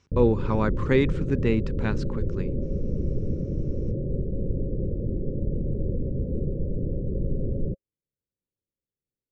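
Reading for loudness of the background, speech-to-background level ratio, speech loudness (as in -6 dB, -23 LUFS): -30.0 LUFS, 3.5 dB, -26.5 LUFS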